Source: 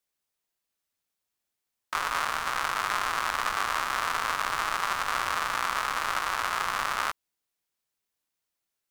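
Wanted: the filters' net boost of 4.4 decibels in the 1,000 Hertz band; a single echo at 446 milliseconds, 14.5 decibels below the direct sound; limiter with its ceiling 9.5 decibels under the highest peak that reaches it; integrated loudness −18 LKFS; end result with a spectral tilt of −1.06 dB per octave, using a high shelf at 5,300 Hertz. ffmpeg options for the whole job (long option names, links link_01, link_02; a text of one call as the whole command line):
ffmpeg -i in.wav -af "equalizer=frequency=1000:width_type=o:gain=5,highshelf=frequency=5300:gain=8,alimiter=limit=-16dB:level=0:latency=1,aecho=1:1:446:0.188,volume=12.5dB" out.wav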